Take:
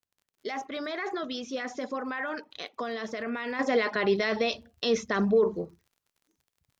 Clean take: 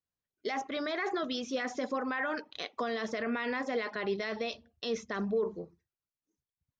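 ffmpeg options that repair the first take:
-af "adeclick=t=4,asetnsamples=n=441:p=0,asendcmd='3.59 volume volume -8dB',volume=0dB"

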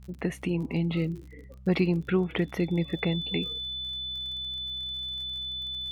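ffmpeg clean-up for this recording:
-af "adeclick=t=4,bandreject=f=64.1:t=h:w=4,bandreject=f=128.2:t=h:w=4,bandreject=f=192.3:t=h:w=4,bandreject=f=3.5k:w=30,agate=range=-21dB:threshold=-38dB"

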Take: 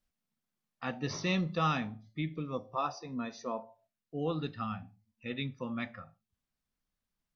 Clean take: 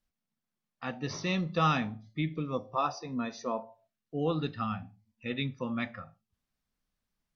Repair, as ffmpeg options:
-af "asetnsamples=n=441:p=0,asendcmd='1.55 volume volume 3.5dB',volume=0dB"

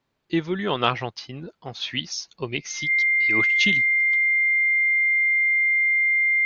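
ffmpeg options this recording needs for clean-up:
-af "bandreject=f=2.1k:w=30"

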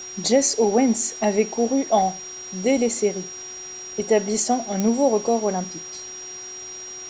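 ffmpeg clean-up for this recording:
-af "adeclick=t=4,bandreject=f=367.9:t=h:w=4,bandreject=f=735.8:t=h:w=4,bandreject=f=1.1037k:t=h:w=4,bandreject=f=1.4716k:t=h:w=4,bandreject=f=5.7k:w=30,afwtdn=0.0089"

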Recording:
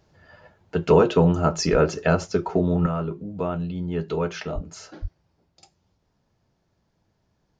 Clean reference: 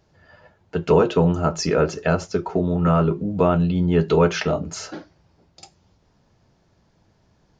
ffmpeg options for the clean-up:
-filter_complex "[0:a]asplit=3[a][b][c];[a]afade=t=out:st=1.71:d=0.02[d];[b]highpass=f=140:w=0.5412,highpass=f=140:w=1.3066,afade=t=in:st=1.71:d=0.02,afade=t=out:st=1.83:d=0.02[e];[c]afade=t=in:st=1.83:d=0.02[f];[d][e][f]amix=inputs=3:normalize=0,asplit=3[g][h][i];[g]afade=t=out:st=4.54:d=0.02[j];[h]highpass=f=140:w=0.5412,highpass=f=140:w=1.3066,afade=t=in:st=4.54:d=0.02,afade=t=out:st=4.66:d=0.02[k];[i]afade=t=in:st=4.66:d=0.02[l];[j][k][l]amix=inputs=3:normalize=0,asplit=3[m][n][o];[m]afade=t=out:st=5.01:d=0.02[p];[n]highpass=f=140:w=0.5412,highpass=f=140:w=1.3066,afade=t=in:st=5.01:d=0.02,afade=t=out:st=5.13:d=0.02[q];[o]afade=t=in:st=5.13:d=0.02[r];[p][q][r]amix=inputs=3:normalize=0,asetnsamples=n=441:p=0,asendcmd='2.86 volume volume 9dB',volume=0dB"

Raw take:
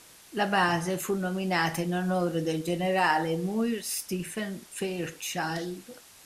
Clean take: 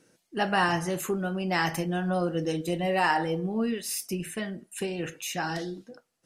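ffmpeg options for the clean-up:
-af "afwtdn=0.0028"

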